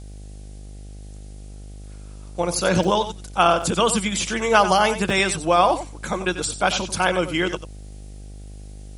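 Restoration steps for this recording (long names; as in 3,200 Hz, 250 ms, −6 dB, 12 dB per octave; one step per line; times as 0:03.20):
hum removal 50.6 Hz, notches 16
repair the gap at 0:02.84/0:03.62/0:05.10, 2.5 ms
downward expander −30 dBFS, range −21 dB
echo removal 92 ms −11.5 dB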